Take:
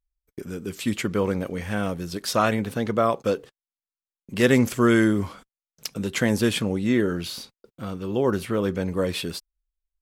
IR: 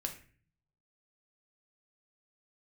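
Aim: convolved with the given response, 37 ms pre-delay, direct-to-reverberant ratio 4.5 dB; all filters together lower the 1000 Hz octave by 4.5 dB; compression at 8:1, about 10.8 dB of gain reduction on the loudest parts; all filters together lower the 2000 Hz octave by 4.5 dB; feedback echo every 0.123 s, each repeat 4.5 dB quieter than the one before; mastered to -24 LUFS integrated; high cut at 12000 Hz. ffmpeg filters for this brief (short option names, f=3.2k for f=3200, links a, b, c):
-filter_complex "[0:a]lowpass=12k,equalizer=f=1k:t=o:g=-5,equalizer=f=2k:t=o:g=-4,acompressor=threshold=-26dB:ratio=8,aecho=1:1:123|246|369|492|615|738|861|984|1107:0.596|0.357|0.214|0.129|0.0772|0.0463|0.0278|0.0167|0.01,asplit=2[a][b];[1:a]atrim=start_sample=2205,adelay=37[c];[b][c]afir=irnorm=-1:irlink=0,volume=-4.5dB[d];[a][d]amix=inputs=2:normalize=0,volume=5dB"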